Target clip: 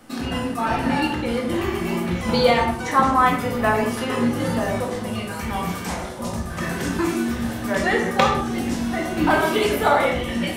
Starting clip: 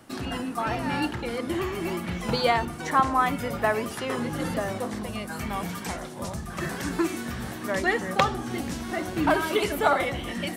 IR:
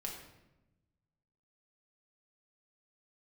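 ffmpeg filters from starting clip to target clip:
-filter_complex "[1:a]atrim=start_sample=2205,afade=t=out:st=0.3:d=0.01,atrim=end_sample=13671,asetrate=52920,aresample=44100[s0];[0:a][s0]afir=irnorm=-1:irlink=0,volume=2.37"

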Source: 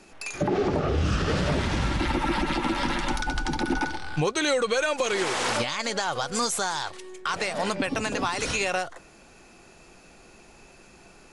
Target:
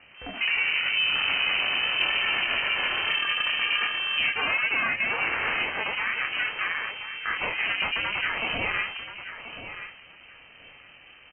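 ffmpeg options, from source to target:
-filter_complex "[0:a]flanger=delay=22.5:depth=4.5:speed=2.4,volume=17.8,asoftclip=hard,volume=0.0562,lowpass=f=2500:t=q:w=0.5098,lowpass=f=2500:t=q:w=0.6013,lowpass=f=2500:t=q:w=0.9,lowpass=f=2500:t=q:w=2.563,afreqshift=-2900,asplit=2[s0][s1];[s1]aecho=0:1:1030|2060:0.282|0.0423[s2];[s0][s2]amix=inputs=2:normalize=0,aeval=exprs='val(0)*sin(2*PI*220*n/s)':c=same,volume=2.11"

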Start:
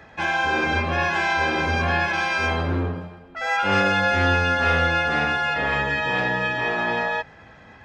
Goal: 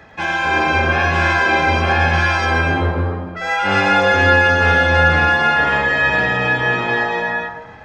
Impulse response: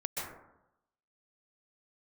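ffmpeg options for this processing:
-filter_complex "[0:a]asplit=2[s0][s1];[1:a]atrim=start_sample=2205,adelay=110[s2];[s1][s2]afir=irnorm=-1:irlink=0,volume=0.631[s3];[s0][s3]amix=inputs=2:normalize=0,volume=1.41"

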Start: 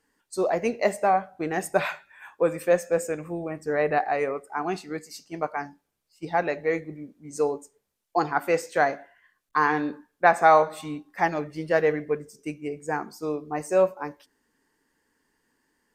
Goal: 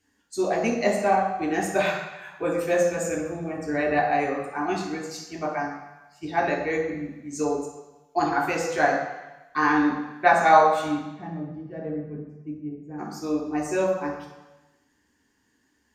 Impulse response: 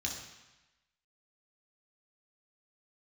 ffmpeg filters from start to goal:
-filter_complex "[0:a]asplit=3[s0][s1][s2];[s0]afade=t=out:st=11.08:d=0.02[s3];[s1]bandpass=f=160:t=q:w=1.4:csg=0,afade=t=in:st=11.08:d=0.02,afade=t=out:st=12.98:d=0.02[s4];[s2]afade=t=in:st=12.98:d=0.02[s5];[s3][s4][s5]amix=inputs=3:normalize=0[s6];[1:a]atrim=start_sample=2205[s7];[s6][s7]afir=irnorm=-1:irlink=0"

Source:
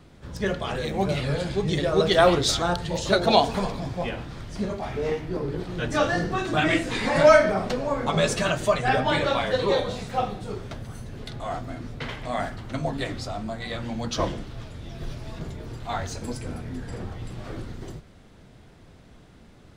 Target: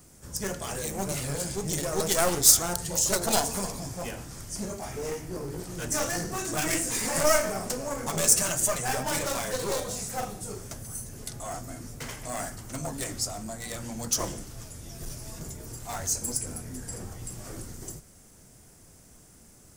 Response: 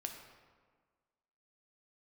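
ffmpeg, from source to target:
-af "aeval=exprs='clip(val(0),-1,0.0447)':c=same,aexciter=amount=13.7:drive=3.6:freq=5600,volume=0.531"

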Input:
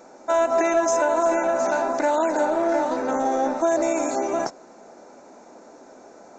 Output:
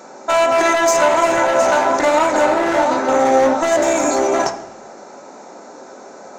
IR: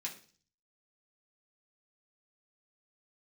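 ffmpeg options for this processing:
-filter_complex "[0:a]highpass=96,asoftclip=type=hard:threshold=0.106,asplit=2[s0][s1];[1:a]atrim=start_sample=2205,asetrate=22491,aresample=44100[s2];[s1][s2]afir=irnorm=-1:irlink=0,volume=0.562[s3];[s0][s3]amix=inputs=2:normalize=0,volume=2.11"

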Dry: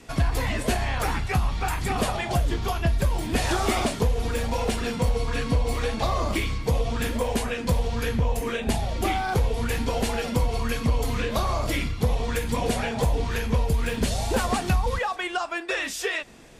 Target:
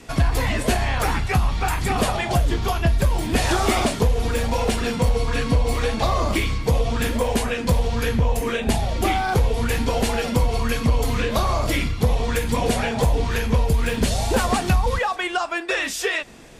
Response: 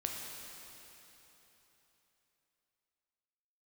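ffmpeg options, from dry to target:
-af "acontrast=77,volume=0.75"

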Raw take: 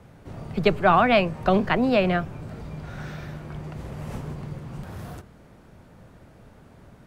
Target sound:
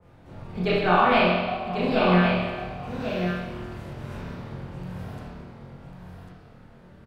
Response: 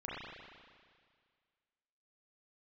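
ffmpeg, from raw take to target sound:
-filter_complex "[0:a]asettb=1/sr,asplit=3[s0][s1][s2];[s0]atrim=end=1.304[s3];[s1]atrim=start=1.3:end=1.78,asetpts=PTS-STARTPTS,afade=t=in:d=0.004:c=qsin,afade=t=out:st=0.476:d=0.004:c=qsin,asplit=3[s4][s5][s6];[s4]bandpass=f=730:t=q:w=8,volume=1[s7];[s5]bandpass=f=1090:t=q:w=8,volume=0.501[s8];[s6]bandpass=f=2440:t=q:w=8,volume=0.355[s9];[s7][s8][s9]amix=inputs=3:normalize=0[s10];[s2]atrim=start=1.776[s11];[s3][s10]acrossfade=d=0.004:c1=hsin:c2=qsin[s12];[s12][s11]acrossfade=d=0.004:c1=qsin:c2=hsin,asettb=1/sr,asplit=3[s13][s14][s15];[s13]atrim=end=2.834[s16];[s14]atrim=start=2.83:end=3.93,asetpts=PTS-STARTPTS,afade=t=in:d=0.004:c=qsin,afade=t=out:st=1.096:d=0.004:c=qsin,highshelf=f=5500:g=7[s17];[s15]atrim=start=3.926[s18];[s16][s17]acrossfade=d=0.004:c1=hsin:c2=qsin[s19];[s19][s18]acrossfade=d=0.004:c1=qsin:c2=hsin,aecho=1:1:1097:0.447[s20];[1:a]atrim=start_sample=2205,asetrate=61740,aresample=44100[s21];[s20][s21]afir=irnorm=-1:irlink=0,adynamicequalizer=threshold=0.0158:dfrequency=2600:dqfactor=0.7:tfrequency=2600:tqfactor=0.7:attack=5:release=100:ratio=0.375:range=2:mode=boostabove:tftype=highshelf"

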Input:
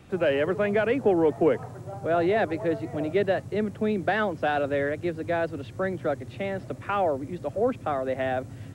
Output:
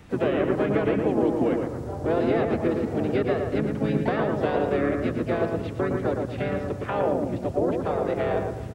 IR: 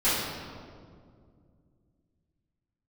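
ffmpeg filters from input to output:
-filter_complex "[0:a]asplit=4[s0][s1][s2][s3];[s1]asetrate=29433,aresample=44100,atempo=1.49831,volume=0.631[s4];[s2]asetrate=33038,aresample=44100,atempo=1.33484,volume=0.708[s5];[s3]asetrate=55563,aresample=44100,atempo=0.793701,volume=0.316[s6];[s0][s4][s5][s6]amix=inputs=4:normalize=0,asplit=2[s7][s8];[1:a]atrim=start_sample=2205,adelay=93[s9];[s8][s9]afir=irnorm=-1:irlink=0,volume=0.0168[s10];[s7][s10]amix=inputs=2:normalize=0,acrossover=split=630|2500[s11][s12][s13];[s11]acompressor=threshold=0.0794:ratio=4[s14];[s12]acompressor=threshold=0.0224:ratio=4[s15];[s13]acompressor=threshold=0.00631:ratio=4[s16];[s14][s15][s16]amix=inputs=3:normalize=0,asplit=2[s17][s18];[s18]adelay=113,lowpass=f=2000:p=1,volume=0.668,asplit=2[s19][s20];[s20]adelay=113,lowpass=f=2000:p=1,volume=0.37,asplit=2[s21][s22];[s22]adelay=113,lowpass=f=2000:p=1,volume=0.37,asplit=2[s23][s24];[s24]adelay=113,lowpass=f=2000:p=1,volume=0.37,asplit=2[s25][s26];[s26]adelay=113,lowpass=f=2000:p=1,volume=0.37[s27];[s17][s19][s21][s23][s25][s27]amix=inputs=6:normalize=0"

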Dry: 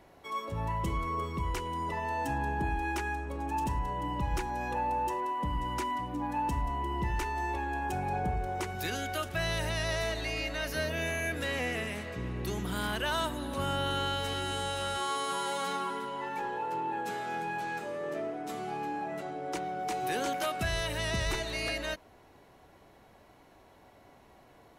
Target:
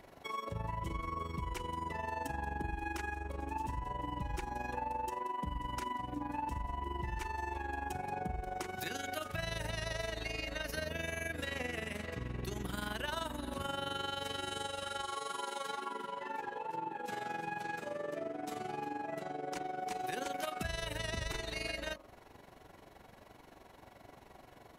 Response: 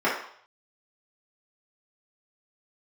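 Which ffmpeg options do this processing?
-filter_complex "[0:a]bandreject=f=45.84:t=h:w=4,bandreject=f=91.68:t=h:w=4,bandreject=f=137.52:t=h:w=4,bandreject=f=183.36:t=h:w=4,bandreject=f=229.2:t=h:w=4,bandreject=f=275.04:t=h:w=4,bandreject=f=320.88:t=h:w=4,bandreject=f=366.72:t=h:w=4,bandreject=f=412.56:t=h:w=4,bandreject=f=458.4:t=h:w=4,bandreject=f=504.24:t=h:w=4,bandreject=f=550.08:t=h:w=4,bandreject=f=595.92:t=h:w=4,bandreject=f=641.76:t=h:w=4,bandreject=f=687.6:t=h:w=4,bandreject=f=733.44:t=h:w=4,bandreject=f=779.28:t=h:w=4,bandreject=f=825.12:t=h:w=4,bandreject=f=870.96:t=h:w=4,bandreject=f=916.8:t=h:w=4,bandreject=f=962.64:t=h:w=4,bandreject=f=1008.48:t=h:w=4,bandreject=f=1054.32:t=h:w=4,bandreject=f=1100.16:t=h:w=4,bandreject=f=1146:t=h:w=4,bandreject=f=1191.84:t=h:w=4,bandreject=f=1237.68:t=h:w=4,bandreject=f=1283.52:t=h:w=4,asplit=3[s0][s1][s2];[s0]afade=t=out:st=14.67:d=0.02[s3];[s1]flanger=delay=18:depth=2.2:speed=2.2,afade=t=in:st=14.67:d=0.02,afade=t=out:st=17.09:d=0.02[s4];[s2]afade=t=in:st=17.09:d=0.02[s5];[s3][s4][s5]amix=inputs=3:normalize=0,tremolo=f=23:d=0.71,acompressor=threshold=0.00631:ratio=2.5,volume=1.78"

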